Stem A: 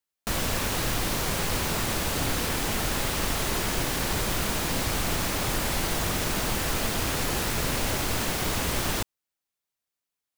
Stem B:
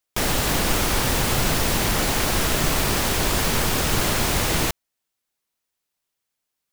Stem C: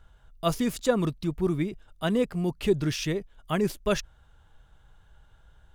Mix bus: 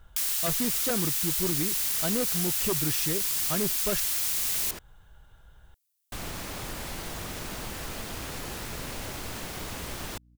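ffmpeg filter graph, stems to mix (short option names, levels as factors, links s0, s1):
-filter_complex "[0:a]aeval=exprs='val(0)+0.00355*(sin(2*PI*60*n/s)+sin(2*PI*2*60*n/s)/2+sin(2*PI*3*60*n/s)/3+sin(2*PI*4*60*n/s)/4+sin(2*PI*5*60*n/s)/5)':c=same,adelay=1150,volume=0.376,asplit=3[s0][s1][s2];[s0]atrim=end=4.79,asetpts=PTS-STARTPTS,afade=t=out:st=4.786:d=0.004:c=hsin[s3];[s1]atrim=start=4.79:end=6.12,asetpts=PTS-STARTPTS,volume=0[s4];[s2]atrim=start=6.12,asetpts=PTS-STARTPTS,afade=t=in:d=0.004:c=hsin[s5];[s3][s4][s5]concat=n=3:v=0:a=1[s6];[1:a]highpass=950,aderivative,volume=1.19[s7];[2:a]volume=1.26,asplit=2[s8][s9];[s9]apad=whole_len=508148[s10];[s6][s10]sidechaincompress=threshold=0.0178:ratio=8:attack=16:release=668[s11];[s11][s7][s8]amix=inputs=3:normalize=0,aeval=exprs='0.168*(abs(mod(val(0)/0.168+3,4)-2)-1)':c=same,acompressor=threshold=0.0224:ratio=1.5"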